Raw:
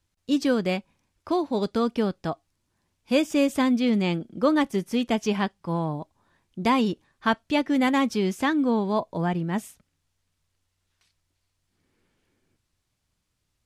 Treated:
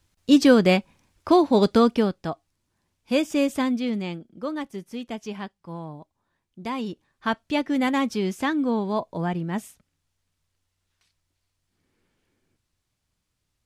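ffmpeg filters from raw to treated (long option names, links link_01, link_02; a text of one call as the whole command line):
ffmpeg -i in.wav -af "volume=15.5dB,afade=type=out:start_time=1.75:duration=0.41:silence=0.398107,afade=type=out:start_time=3.46:duration=0.79:silence=0.375837,afade=type=in:start_time=6.7:duration=0.77:silence=0.398107" out.wav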